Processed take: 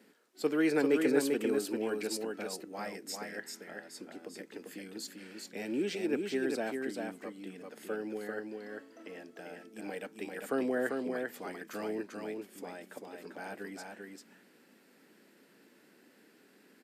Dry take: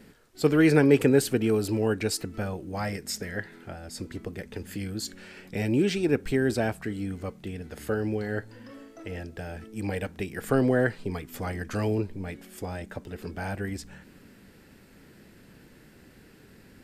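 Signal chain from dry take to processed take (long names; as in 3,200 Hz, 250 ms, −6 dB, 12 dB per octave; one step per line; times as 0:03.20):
high-pass filter 230 Hz 24 dB per octave
on a send: single-tap delay 394 ms −4 dB
on the sum: level −8 dB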